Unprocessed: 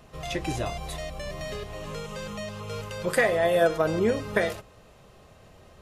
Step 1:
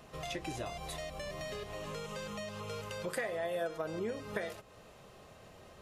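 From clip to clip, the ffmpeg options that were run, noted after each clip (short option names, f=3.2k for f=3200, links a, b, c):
-af "lowshelf=f=110:g=-8.5,acompressor=threshold=-39dB:ratio=2.5,volume=-1dB"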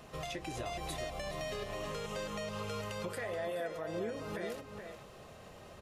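-filter_complex "[0:a]alimiter=level_in=8.5dB:limit=-24dB:level=0:latency=1:release=153,volume=-8.5dB,asplit=2[a][b];[b]adelay=425.7,volume=-6dB,highshelf=f=4k:g=-9.58[c];[a][c]amix=inputs=2:normalize=0,volume=2dB"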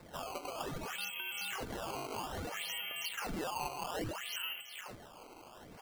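-af "lowpass=f=2.8k:t=q:w=0.5098,lowpass=f=2.8k:t=q:w=0.6013,lowpass=f=2.8k:t=q:w=0.9,lowpass=f=2.8k:t=q:w=2.563,afreqshift=-3300,acrusher=samples=14:mix=1:aa=0.000001:lfo=1:lforange=22.4:lforate=0.61,volume=-1dB"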